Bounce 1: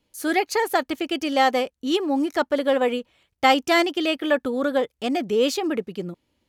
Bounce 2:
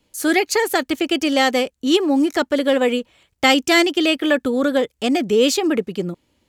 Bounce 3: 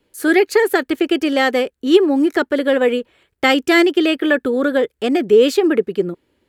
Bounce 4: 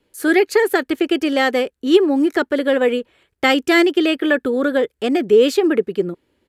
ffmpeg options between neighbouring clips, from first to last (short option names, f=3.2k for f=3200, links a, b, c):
-filter_complex "[0:a]equalizer=f=7.5k:w=3:g=4.5,acrossover=split=540|1400[a][b][c];[b]acompressor=threshold=-35dB:ratio=6[d];[a][d][c]amix=inputs=3:normalize=0,volume=6.5dB"
-af "equalizer=f=400:t=o:w=0.67:g=10,equalizer=f=1.6k:t=o:w=0.67:g=7,equalizer=f=6.3k:t=o:w=0.67:g=-7,volume=-2.5dB"
-af "aresample=32000,aresample=44100,volume=-1dB"